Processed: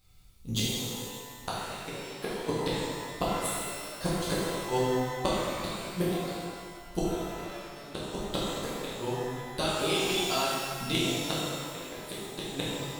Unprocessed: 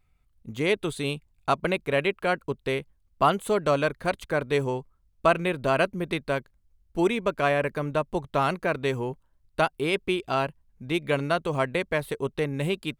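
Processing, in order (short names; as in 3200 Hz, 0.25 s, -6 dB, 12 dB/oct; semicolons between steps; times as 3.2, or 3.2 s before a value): resonant high shelf 2900 Hz +10.5 dB, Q 1.5; 9.04–10.95 compressor, threshold -34 dBFS, peak gain reduction 15.5 dB; flipped gate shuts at -18 dBFS, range -30 dB; shimmer reverb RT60 1.7 s, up +12 st, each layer -8 dB, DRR -8.5 dB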